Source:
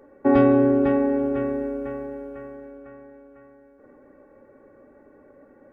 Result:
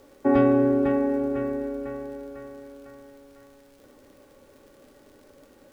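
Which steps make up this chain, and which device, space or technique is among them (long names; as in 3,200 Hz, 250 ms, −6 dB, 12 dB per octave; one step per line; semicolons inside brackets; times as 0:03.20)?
vinyl LP (surface crackle; pink noise bed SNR 35 dB)
level −2.5 dB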